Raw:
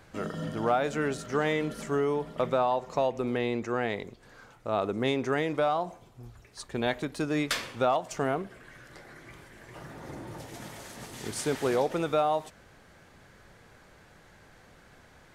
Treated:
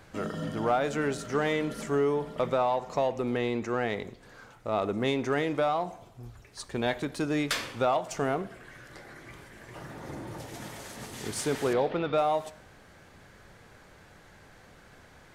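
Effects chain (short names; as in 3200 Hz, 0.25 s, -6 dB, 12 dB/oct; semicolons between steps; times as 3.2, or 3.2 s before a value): 11.73–12.18 steep low-pass 4300 Hz; in parallel at -7.5 dB: soft clip -31 dBFS, distortion -7 dB; on the sum: plate-style reverb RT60 0.77 s, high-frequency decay 0.95×, DRR 16.5 dB; gain -1.5 dB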